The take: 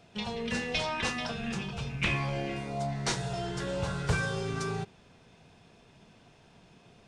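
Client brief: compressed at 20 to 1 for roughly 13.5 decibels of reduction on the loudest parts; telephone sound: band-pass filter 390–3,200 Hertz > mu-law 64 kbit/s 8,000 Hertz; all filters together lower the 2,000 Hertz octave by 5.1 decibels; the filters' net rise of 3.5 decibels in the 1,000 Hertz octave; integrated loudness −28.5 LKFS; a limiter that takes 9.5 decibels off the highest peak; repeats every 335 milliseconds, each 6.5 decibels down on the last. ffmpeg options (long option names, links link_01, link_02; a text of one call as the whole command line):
ffmpeg -i in.wav -af "equalizer=frequency=1000:width_type=o:gain=7,equalizer=frequency=2000:width_type=o:gain=-8.5,acompressor=threshold=-35dB:ratio=20,alimiter=level_in=10dB:limit=-24dB:level=0:latency=1,volume=-10dB,highpass=390,lowpass=3200,aecho=1:1:335|670|1005|1340|1675|2010:0.473|0.222|0.105|0.0491|0.0231|0.0109,volume=17dB" -ar 8000 -c:a pcm_mulaw out.wav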